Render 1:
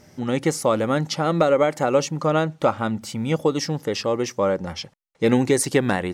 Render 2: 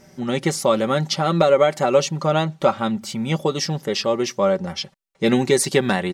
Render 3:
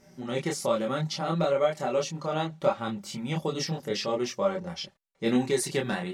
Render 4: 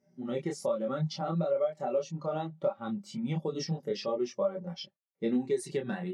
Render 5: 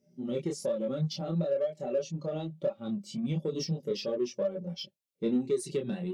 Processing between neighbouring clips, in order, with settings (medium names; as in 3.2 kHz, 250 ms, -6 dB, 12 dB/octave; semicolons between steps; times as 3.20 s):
comb 5.2 ms, depth 55%; dynamic bell 3.8 kHz, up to +6 dB, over -42 dBFS, Q 1.5
gain riding within 3 dB 2 s; chorus voices 4, 1 Hz, delay 27 ms, depth 3.7 ms; trim -6.5 dB
high-pass 110 Hz; compression 6:1, threshold -28 dBFS, peak gain reduction 10 dB; spectral contrast expander 1.5:1
high-order bell 1.2 kHz -12 dB; in parallel at -9 dB: saturation -37 dBFS, distortion -6 dB